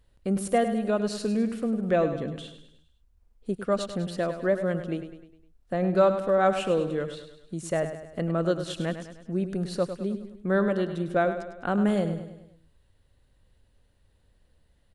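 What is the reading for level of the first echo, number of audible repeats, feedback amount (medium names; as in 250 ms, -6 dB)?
-10.0 dB, 5, 50%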